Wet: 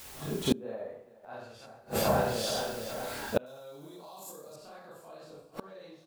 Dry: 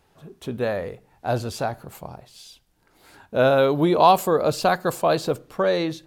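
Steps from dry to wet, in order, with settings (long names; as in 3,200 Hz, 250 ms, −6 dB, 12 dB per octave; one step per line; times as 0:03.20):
four-comb reverb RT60 0.6 s, combs from 28 ms, DRR −9.5 dB
brickwall limiter −5 dBFS, peak gain reduction 11 dB
bit-depth reduction 8 bits, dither triangular
0:00.52–0:01.65: parametric band 310 Hz → 2,300 Hz +13 dB 2.7 octaves
on a send: repeating echo 424 ms, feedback 59%, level −18.5 dB
on the sum: gate with flip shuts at −13 dBFS, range −35 dB
0:03.46–0:04.56: high shelf with overshoot 3,900 Hz +14 dB, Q 1.5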